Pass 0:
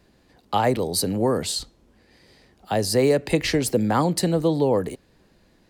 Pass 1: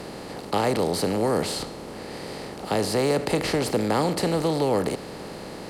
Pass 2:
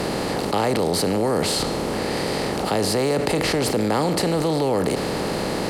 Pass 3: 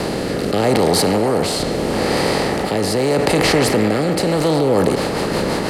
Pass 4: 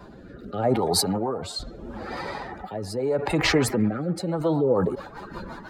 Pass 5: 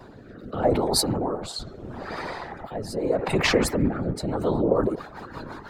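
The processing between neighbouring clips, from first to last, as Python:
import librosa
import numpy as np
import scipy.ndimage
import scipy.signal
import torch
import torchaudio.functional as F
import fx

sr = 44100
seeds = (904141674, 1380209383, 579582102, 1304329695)

y1 = fx.bin_compress(x, sr, power=0.4)
y1 = fx.high_shelf(y1, sr, hz=7800.0, db=-7.0)
y1 = y1 * librosa.db_to_amplitude(-7.0)
y2 = fx.env_flatten(y1, sr, amount_pct=70)
y3 = fx.rotary_switch(y2, sr, hz=0.8, then_hz=6.0, switch_at_s=4.21)
y3 = fx.echo_wet_bandpass(y3, sr, ms=120, feedback_pct=74, hz=1200.0, wet_db=-5.5)
y3 = y3 * librosa.db_to_amplitude(6.5)
y4 = fx.bin_expand(y3, sr, power=3.0)
y5 = fx.whisperise(y4, sr, seeds[0])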